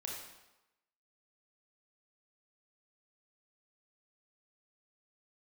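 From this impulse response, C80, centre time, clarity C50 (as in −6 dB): 4.5 dB, 56 ms, 1.5 dB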